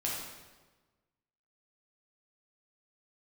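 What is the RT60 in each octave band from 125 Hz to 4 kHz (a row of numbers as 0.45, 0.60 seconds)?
1.5, 1.4, 1.3, 1.2, 1.1, 1.0 seconds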